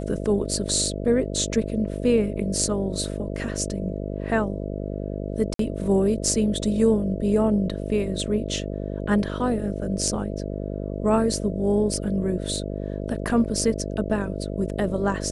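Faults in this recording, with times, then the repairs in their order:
buzz 50 Hz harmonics 13 -30 dBFS
5.54–5.59 s: dropout 53 ms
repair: de-hum 50 Hz, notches 13; interpolate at 5.54 s, 53 ms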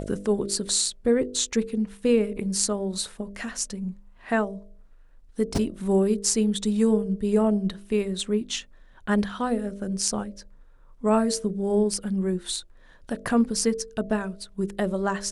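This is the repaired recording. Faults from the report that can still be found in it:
nothing left

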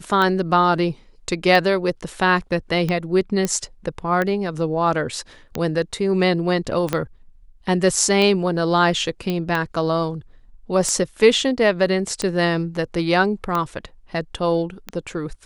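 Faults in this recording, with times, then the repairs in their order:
tick 45 rpm -10 dBFS
3.45 s: pop -8 dBFS
6.93 s: pop -7 dBFS
9.30 s: pop -12 dBFS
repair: de-click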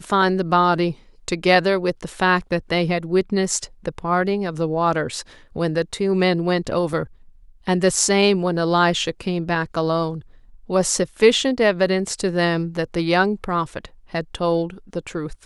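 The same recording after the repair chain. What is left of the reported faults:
6.93 s: pop
9.30 s: pop

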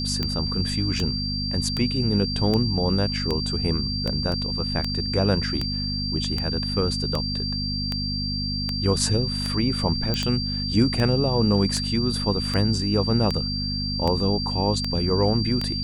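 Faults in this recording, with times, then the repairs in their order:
hum 50 Hz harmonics 5 -29 dBFS
tick 78 rpm -12 dBFS
whine 4.7 kHz -28 dBFS
4.32 s: dropout 2 ms
10.14 s: pop -11 dBFS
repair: de-click; de-hum 50 Hz, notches 5; band-stop 4.7 kHz, Q 30; interpolate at 4.32 s, 2 ms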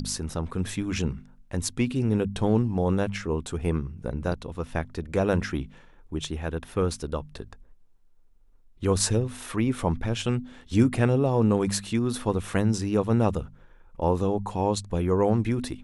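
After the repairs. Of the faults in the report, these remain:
nothing left

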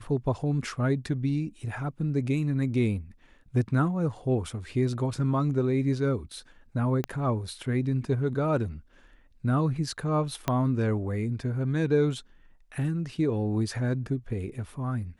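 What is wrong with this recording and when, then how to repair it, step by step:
7.04 s: pop -16 dBFS
10.48 s: pop -12 dBFS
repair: de-click

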